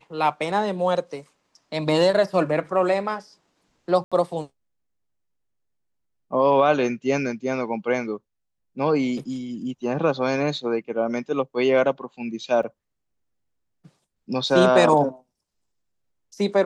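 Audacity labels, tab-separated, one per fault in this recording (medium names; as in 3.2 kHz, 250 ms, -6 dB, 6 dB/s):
4.040000	4.120000	dropout 76 ms
12.630000	12.630000	dropout 2.3 ms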